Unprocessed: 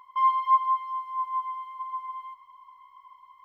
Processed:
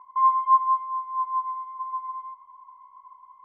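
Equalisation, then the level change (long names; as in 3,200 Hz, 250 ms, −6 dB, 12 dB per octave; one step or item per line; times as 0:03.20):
low-pass with resonance 900 Hz, resonance Q 1.8
0.0 dB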